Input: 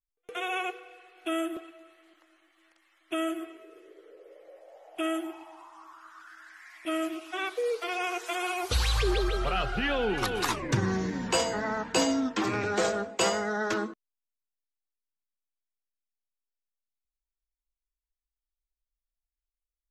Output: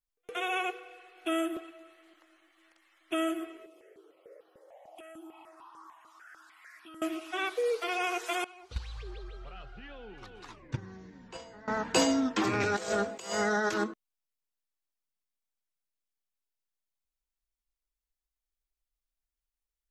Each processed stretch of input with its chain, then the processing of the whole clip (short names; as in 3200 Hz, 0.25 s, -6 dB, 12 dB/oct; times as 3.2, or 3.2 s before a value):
3.66–7.02 HPF 190 Hz + compressor 5:1, threshold -45 dBFS + step phaser 6.7 Hz 430–2100 Hz
8.44–11.68 LPF 6000 Hz + gate -22 dBFS, range -20 dB + low shelf 81 Hz +8 dB
12.6–13.84 high shelf 3900 Hz +8 dB + negative-ratio compressor -30 dBFS, ratio -0.5
whole clip: dry